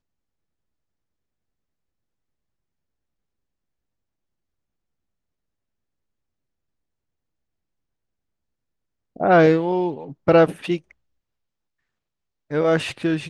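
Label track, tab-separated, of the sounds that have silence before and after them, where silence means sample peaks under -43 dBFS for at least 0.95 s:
9.160000	10.910000	sound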